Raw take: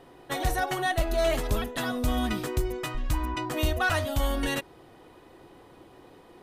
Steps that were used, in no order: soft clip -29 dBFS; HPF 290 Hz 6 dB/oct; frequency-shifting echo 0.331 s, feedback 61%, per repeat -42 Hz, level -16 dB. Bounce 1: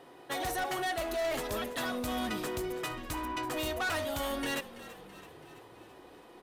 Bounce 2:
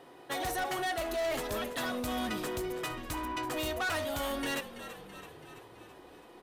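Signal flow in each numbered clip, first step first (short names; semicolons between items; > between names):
HPF > soft clip > frequency-shifting echo; HPF > frequency-shifting echo > soft clip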